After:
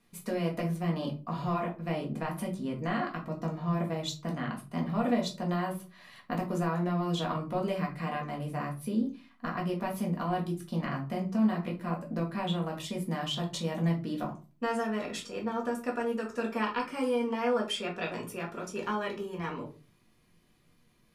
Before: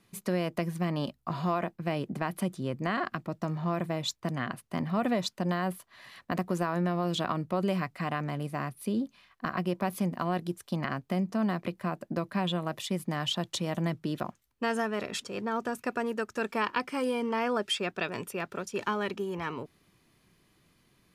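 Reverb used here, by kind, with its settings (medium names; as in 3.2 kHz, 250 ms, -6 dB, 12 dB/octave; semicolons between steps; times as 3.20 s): simulated room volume 150 m³, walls furnished, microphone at 1.8 m; trim -6 dB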